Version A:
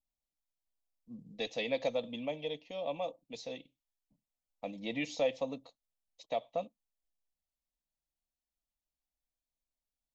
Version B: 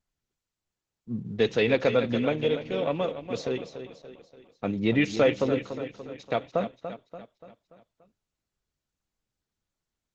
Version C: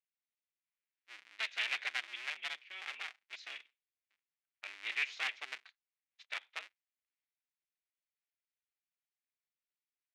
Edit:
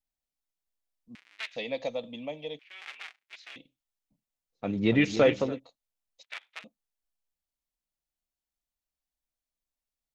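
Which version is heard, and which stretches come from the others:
A
1.15–1.56 from C
2.59–3.56 from C
4.64–5.48 from B, crossfade 0.24 s
6.23–6.64 from C

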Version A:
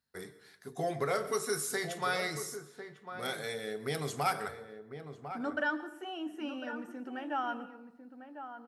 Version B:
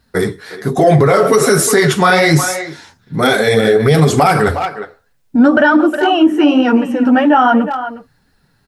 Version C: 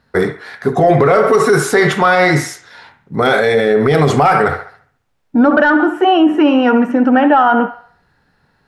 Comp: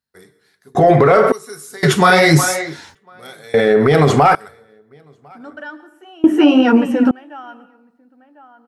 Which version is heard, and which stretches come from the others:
A
0.75–1.32 from C
1.83–2.95 from B
3.54–4.35 from C
6.24–7.11 from B

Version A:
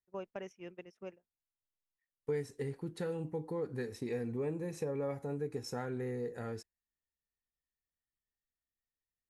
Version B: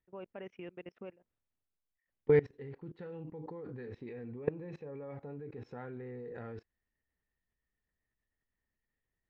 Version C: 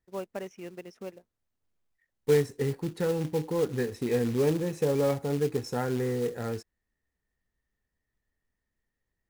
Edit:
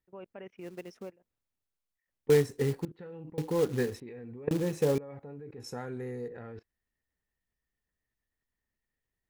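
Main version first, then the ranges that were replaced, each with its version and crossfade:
B
0.64–1.05 from C, crossfade 0.16 s
2.3–2.85 from C
3.38–4 from C
4.51–4.98 from C
5.6–6.28 from A

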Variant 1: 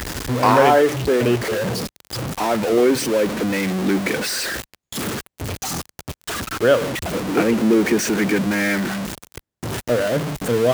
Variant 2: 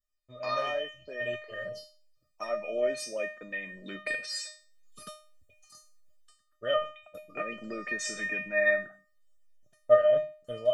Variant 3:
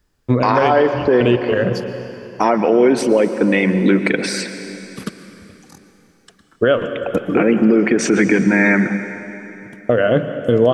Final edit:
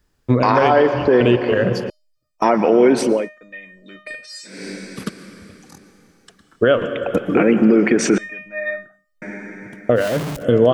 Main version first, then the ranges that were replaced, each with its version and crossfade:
3
1.9–2.42 from 2
3.18–4.55 from 2, crossfade 0.24 s
8.18–9.22 from 2
10–10.4 from 1, crossfade 0.10 s

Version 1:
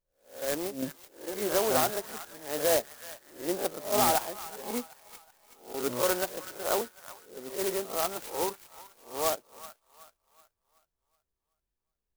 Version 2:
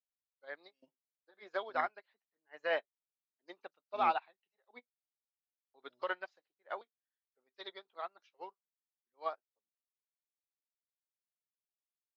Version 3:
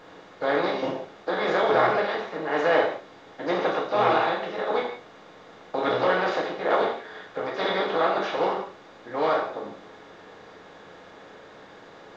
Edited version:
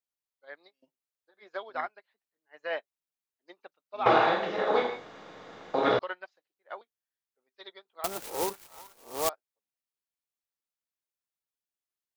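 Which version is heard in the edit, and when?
2
4.06–5.99 from 3
8.04–9.29 from 1

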